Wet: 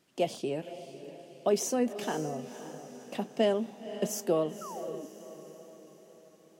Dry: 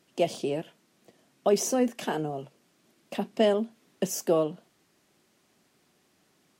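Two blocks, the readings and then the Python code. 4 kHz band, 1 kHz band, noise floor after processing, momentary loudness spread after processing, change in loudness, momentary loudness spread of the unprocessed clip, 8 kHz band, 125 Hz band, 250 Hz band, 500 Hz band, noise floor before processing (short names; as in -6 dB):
-3.5 dB, -3.0 dB, -59 dBFS, 19 LU, -4.0 dB, 12 LU, -3.0 dB, -3.0 dB, -3.0 dB, -3.0 dB, -68 dBFS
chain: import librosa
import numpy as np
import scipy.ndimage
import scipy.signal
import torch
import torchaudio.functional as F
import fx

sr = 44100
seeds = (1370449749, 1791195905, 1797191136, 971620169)

y = fx.echo_diffused(x, sr, ms=527, feedback_pct=50, wet_db=-12)
y = fx.wow_flutter(y, sr, seeds[0], rate_hz=2.1, depth_cents=24.0)
y = fx.spec_paint(y, sr, seeds[1], shape='fall', start_s=4.61, length_s=0.45, low_hz=260.0, high_hz=1400.0, level_db=-39.0)
y = y * librosa.db_to_amplitude(-3.5)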